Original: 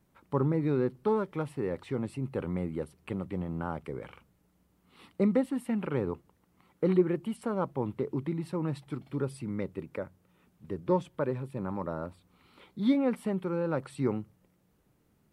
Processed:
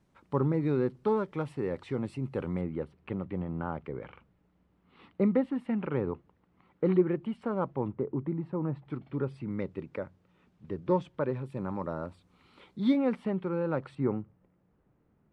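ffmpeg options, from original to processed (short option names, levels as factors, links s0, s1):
-af "asetnsamples=n=441:p=0,asendcmd='2.61 lowpass f 2800;7.88 lowpass f 1300;8.85 lowpass f 2700;9.51 lowpass f 4700;11.46 lowpass f 7600;13.16 lowpass f 3500;13.95 lowpass f 1700',lowpass=7100"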